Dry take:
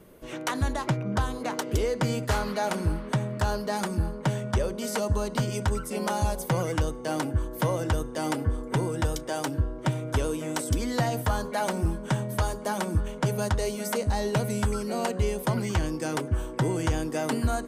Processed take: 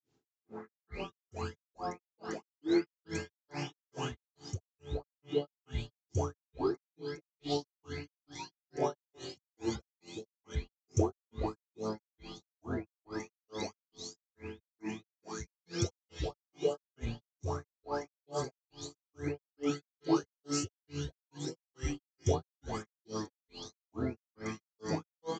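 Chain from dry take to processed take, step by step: spectral delay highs late, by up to 0.439 s; HPF 170 Hz 12 dB/oct; comb 1.7 ms, depth 40%; pre-echo 0.157 s -19 dB; wide varispeed 0.696×; requantised 10-bit, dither triangular; grains 0.257 s, grains 2.3/s, spray 14 ms, pitch spread up and down by 0 st; downsampling 16000 Hz; three-band expander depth 70%; gain -3.5 dB

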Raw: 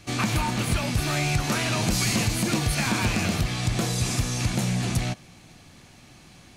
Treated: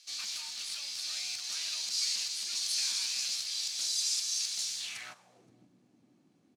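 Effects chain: CVSD 64 kbps; tone controls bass +4 dB, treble +9 dB, from 2.55 s treble +15 dB; companded quantiser 4-bit; HPF 110 Hz; low shelf 330 Hz -9.5 dB; feedback echo 0.522 s, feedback 31%, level -17 dB; band-pass sweep 4600 Hz -> 280 Hz, 4.76–5.54; gain -5.5 dB

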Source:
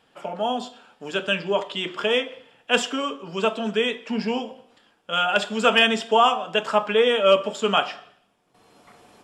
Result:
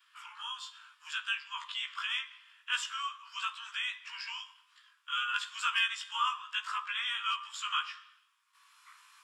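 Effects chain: short-time reversal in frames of 39 ms; steep high-pass 1000 Hz 96 dB/oct; compressor 1.5:1, threshold -43 dBFS, peak gain reduction 9.5 dB; gain +1 dB

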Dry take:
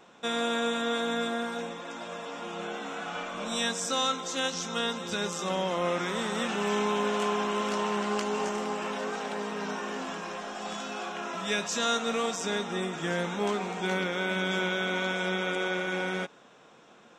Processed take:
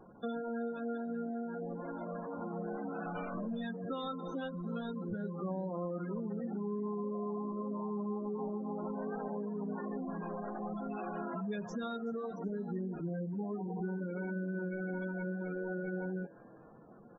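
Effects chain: RIAA curve playback; compressor, threshold -31 dBFS, peak gain reduction 10.5 dB; flange 0.85 Hz, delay 9.2 ms, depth 2.1 ms, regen -72%; spectral gate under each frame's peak -15 dB strong; on a send: frequency-shifting echo 0.377 s, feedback 37%, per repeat +140 Hz, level -24 dB; on the sum: gain +1 dB

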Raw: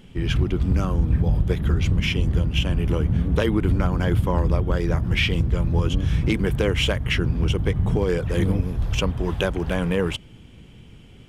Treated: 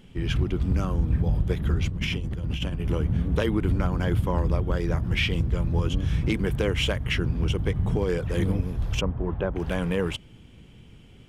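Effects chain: 1.88–2.85 negative-ratio compressor -25 dBFS, ratio -1; 9.01–9.56 LPF 1300 Hz 12 dB/oct; gain -3.5 dB

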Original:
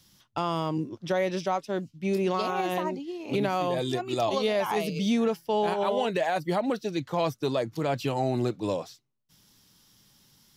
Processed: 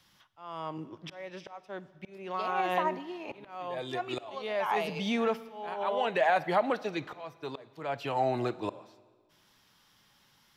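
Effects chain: three-band isolator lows -12 dB, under 580 Hz, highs -14 dB, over 3000 Hz; auto swell 0.751 s; Schroeder reverb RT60 1.5 s, DRR 17 dB; gain +4.5 dB

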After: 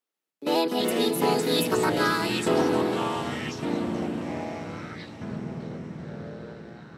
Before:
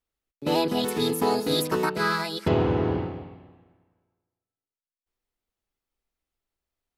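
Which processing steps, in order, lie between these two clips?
HPF 230 Hz 24 dB/oct; on a send: diffused feedback echo 0.49 s, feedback 54%, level -12 dB; on the sum: echoes that change speed 0.141 s, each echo -6 st, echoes 3, each echo -6 dB

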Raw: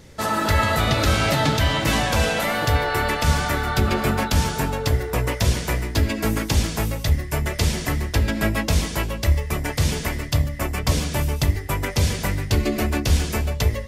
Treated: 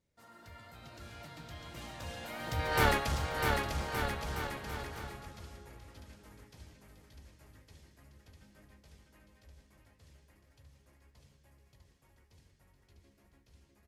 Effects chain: Doppler pass-by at 2.85, 20 m/s, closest 1 m; one-sided clip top -27.5 dBFS; bouncing-ball echo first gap 0.65 s, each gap 0.8×, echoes 5

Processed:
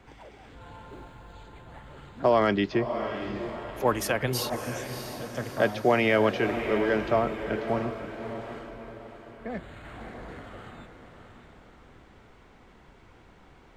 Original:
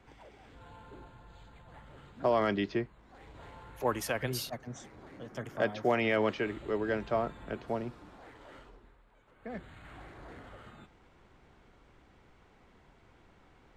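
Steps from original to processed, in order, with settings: 0.9–1.33 high shelf 11000 Hz +8.5 dB; on a send: diffused feedback echo 0.636 s, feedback 46%, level -8.5 dB; on the sum: gain +6 dB

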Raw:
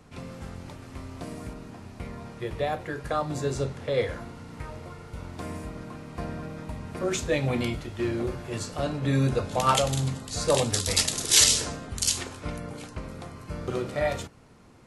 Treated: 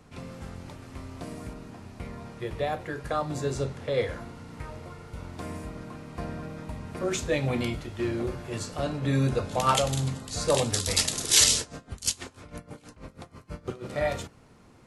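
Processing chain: 11.6–13.9 dB-linear tremolo 6.2 Hz, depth 19 dB; gain -1 dB

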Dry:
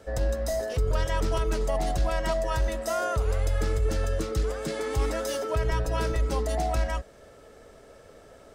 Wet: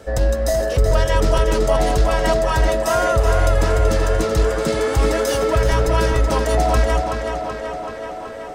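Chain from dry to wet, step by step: tape echo 0.379 s, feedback 78%, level -4 dB, low-pass 5800 Hz; gain +9 dB

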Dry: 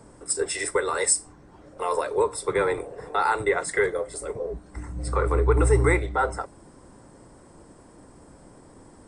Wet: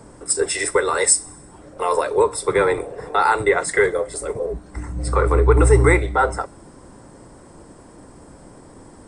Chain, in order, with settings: thin delay 64 ms, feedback 66%, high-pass 2800 Hz, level -23.5 dB; gain +6 dB

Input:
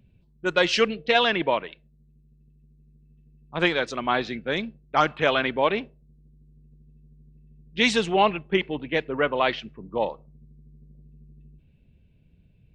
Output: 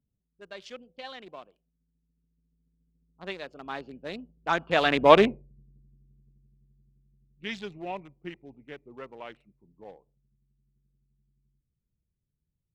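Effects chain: Wiener smoothing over 25 samples; Doppler pass-by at 5.18, 33 m/s, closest 5.3 m; gain +8 dB

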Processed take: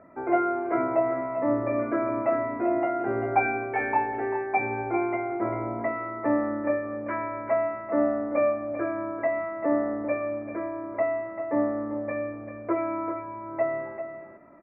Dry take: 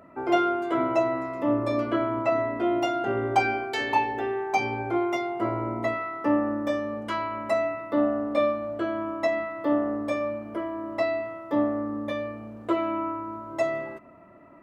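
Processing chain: rippled Chebyshev low-pass 2400 Hz, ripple 3 dB; echo 0.392 s -9.5 dB

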